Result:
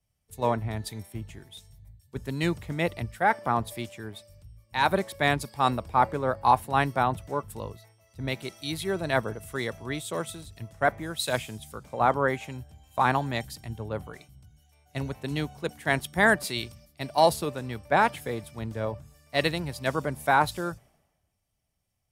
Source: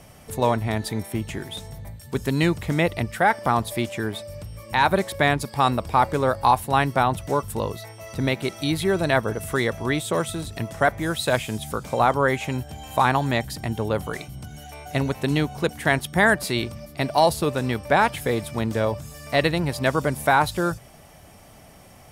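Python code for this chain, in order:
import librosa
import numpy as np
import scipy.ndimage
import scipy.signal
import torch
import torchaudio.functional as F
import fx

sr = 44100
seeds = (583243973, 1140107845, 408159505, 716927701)

y = fx.band_widen(x, sr, depth_pct=100)
y = y * 10.0 ** (-6.5 / 20.0)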